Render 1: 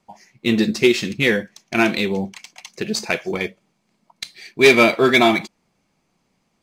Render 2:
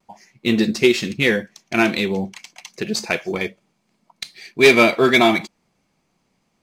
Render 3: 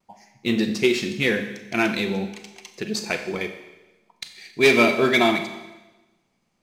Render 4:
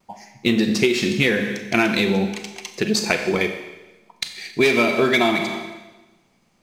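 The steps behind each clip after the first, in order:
vibrato 0.31 Hz 12 cents
Schroeder reverb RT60 1.1 s, combs from 30 ms, DRR 7.5 dB; gain -4.5 dB
compressor 6:1, threshold -23 dBFS, peak gain reduction 11 dB; gain +8.5 dB

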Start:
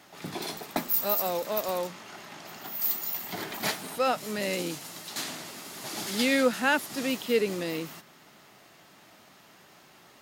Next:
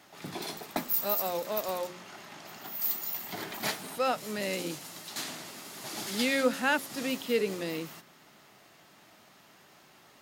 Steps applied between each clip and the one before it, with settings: de-hum 89.92 Hz, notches 6; gain -2.5 dB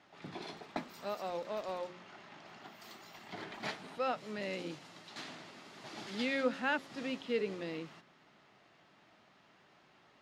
LPF 3800 Hz 12 dB/oct; gain -6 dB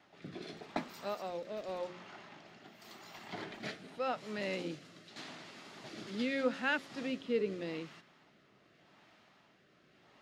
rotary speaker horn 0.85 Hz; gain +2.5 dB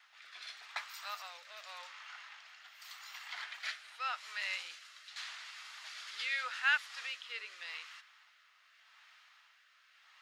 HPF 1200 Hz 24 dB/oct; gain +5 dB

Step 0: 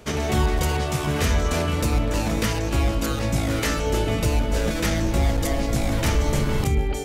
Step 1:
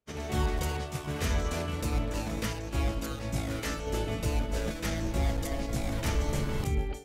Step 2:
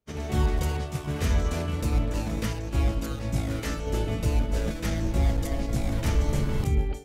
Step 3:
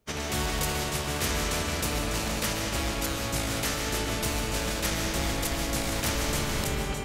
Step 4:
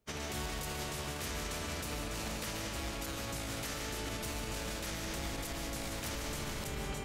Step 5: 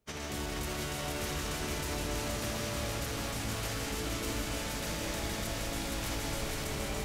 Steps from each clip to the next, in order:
expander -19 dBFS; gain -7.5 dB
low shelf 330 Hz +6 dB
digital reverb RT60 1.9 s, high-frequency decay 0.7×, pre-delay 0.1 s, DRR 3 dB; spectral compressor 2:1; gain -1.5 dB
limiter -23 dBFS, peak gain reduction 9 dB; gain -6.5 dB
echo with dull and thin repeats by turns 0.235 s, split 860 Hz, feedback 81%, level -2 dB; lo-fi delay 82 ms, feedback 80%, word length 10-bit, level -11 dB

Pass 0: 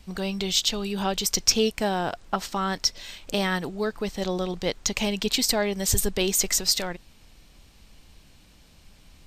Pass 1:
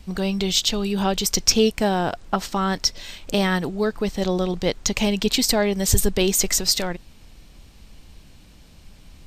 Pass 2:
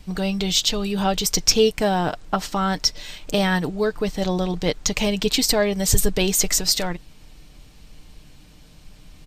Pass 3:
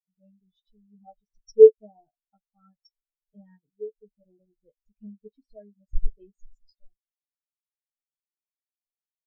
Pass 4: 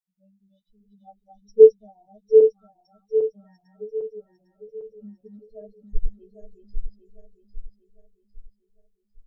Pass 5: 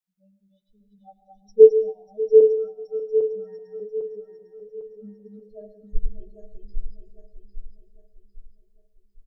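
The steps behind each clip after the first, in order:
low shelf 470 Hz +4.5 dB; gain +2.5 dB
comb 6.6 ms, depth 38%
median filter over 3 samples; on a send: early reflections 14 ms -7 dB, 48 ms -15 dB; on the sum: spectral expander 4:1
regenerating reverse delay 0.401 s, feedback 63%, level -3.5 dB; harmonic-percussive split percussive -9 dB; doubler 13 ms -13.5 dB; gain +1 dB
feedback echo 0.591 s, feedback 25%, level -16.5 dB; reverb RT60 0.50 s, pre-delay 97 ms, DRR 12.5 dB

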